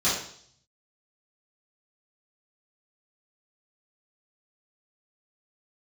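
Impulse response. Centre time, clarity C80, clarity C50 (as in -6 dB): 47 ms, 7.0 dB, 2.5 dB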